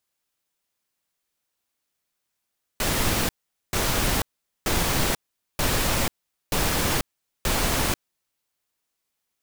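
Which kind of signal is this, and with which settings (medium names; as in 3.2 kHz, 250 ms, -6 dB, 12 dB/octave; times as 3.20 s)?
noise bursts pink, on 0.49 s, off 0.44 s, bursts 6, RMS -23 dBFS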